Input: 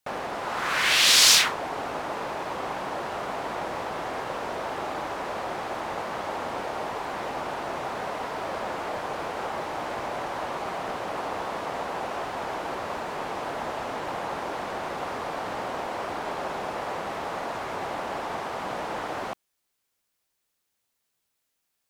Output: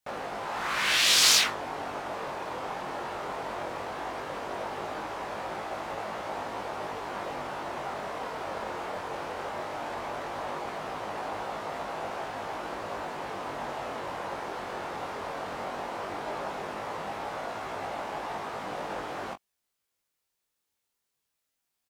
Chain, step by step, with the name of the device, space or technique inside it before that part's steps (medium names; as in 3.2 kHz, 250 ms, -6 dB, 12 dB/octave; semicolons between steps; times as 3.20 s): double-tracked vocal (doubling 20 ms -13 dB; chorus 0.17 Hz, delay 18.5 ms, depth 3.8 ms); trim -1 dB